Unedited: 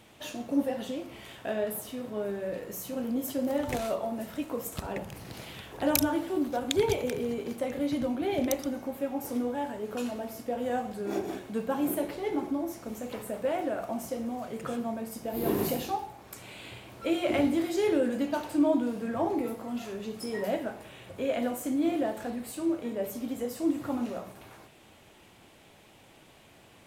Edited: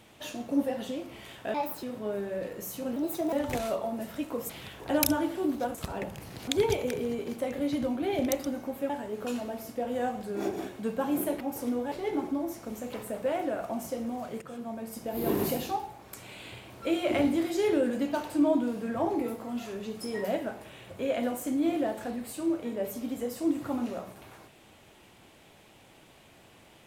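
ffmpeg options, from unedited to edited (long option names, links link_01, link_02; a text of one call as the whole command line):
ffmpeg -i in.wav -filter_complex "[0:a]asplit=12[link_01][link_02][link_03][link_04][link_05][link_06][link_07][link_08][link_09][link_10][link_11][link_12];[link_01]atrim=end=1.544[link_13];[link_02]atrim=start=1.54:end=1.94,asetpts=PTS-STARTPTS,asetrate=60858,aresample=44100[link_14];[link_03]atrim=start=1.936:end=3.074[link_15];[link_04]atrim=start=3.07:end=3.52,asetpts=PTS-STARTPTS,asetrate=54243,aresample=44100,atrim=end_sample=16134,asetpts=PTS-STARTPTS[link_16];[link_05]atrim=start=3.516:end=4.692[link_17];[link_06]atrim=start=5.418:end=6.672[link_18];[link_07]atrim=start=4.688:end=5.422[link_19];[link_08]atrim=start=6.668:end=9.092[link_20];[link_09]atrim=start=9.598:end=12.112[link_21];[link_10]atrim=start=9.088:end=9.602[link_22];[link_11]atrim=start=12.108:end=14.61,asetpts=PTS-STARTPTS,afade=type=out:start_time=2.498:duration=0.004:curve=hsin:silence=0.251189[link_23];[link_12]atrim=start=14.61,asetpts=PTS-STARTPTS,afade=type=in:duration=0.58:silence=0.251189[link_24];[link_13][link_14]acrossfade=duration=0.004:curve1=hsin:curve2=hsin[link_25];[link_25][link_15]acrossfade=duration=0.004:curve1=hsin:curve2=hsin[link_26];[link_26][link_16]acrossfade=duration=0.004:curve1=hsin:curve2=hsin[link_27];[link_27][link_17]acrossfade=duration=0.004:curve1=hsin:curve2=hsin[link_28];[link_28][link_18]acrossfade=duration=0.004:curve1=hsin:curve2=hsin[link_29];[link_29][link_19]acrossfade=duration=0.004:curve1=hsin:curve2=hsin[link_30];[link_30][link_20]acrossfade=duration=0.004:curve1=hsin:curve2=hsin[link_31];[link_31][link_21]acrossfade=duration=0.004:curve1=hsin:curve2=hsin[link_32];[link_32][link_22]acrossfade=duration=0.004:curve1=hsin:curve2=hsin[link_33];[link_23][link_24]concat=n=2:v=0:a=1[link_34];[link_33][link_34]acrossfade=duration=0.004:curve1=hsin:curve2=hsin" out.wav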